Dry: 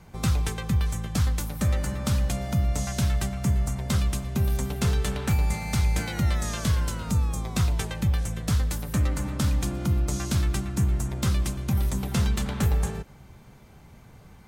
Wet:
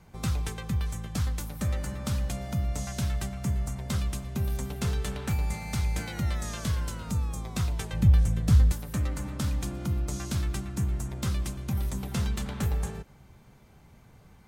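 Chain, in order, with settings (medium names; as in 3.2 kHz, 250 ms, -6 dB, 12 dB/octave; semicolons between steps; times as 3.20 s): 7.93–8.72 s: bass shelf 270 Hz +11 dB; trim -5 dB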